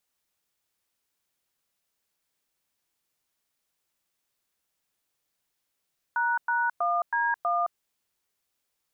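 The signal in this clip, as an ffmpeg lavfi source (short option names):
-f lavfi -i "aevalsrc='0.0531*clip(min(mod(t,0.322),0.216-mod(t,0.322))/0.002,0,1)*(eq(floor(t/0.322),0)*(sin(2*PI*941*mod(t,0.322))+sin(2*PI*1477*mod(t,0.322)))+eq(floor(t/0.322),1)*(sin(2*PI*941*mod(t,0.322))+sin(2*PI*1477*mod(t,0.322)))+eq(floor(t/0.322),2)*(sin(2*PI*697*mod(t,0.322))+sin(2*PI*1209*mod(t,0.322)))+eq(floor(t/0.322),3)*(sin(2*PI*941*mod(t,0.322))+sin(2*PI*1633*mod(t,0.322)))+eq(floor(t/0.322),4)*(sin(2*PI*697*mod(t,0.322))+sin(2*PI*1209*mod(t,0.322))))':d=1.61:s=44100"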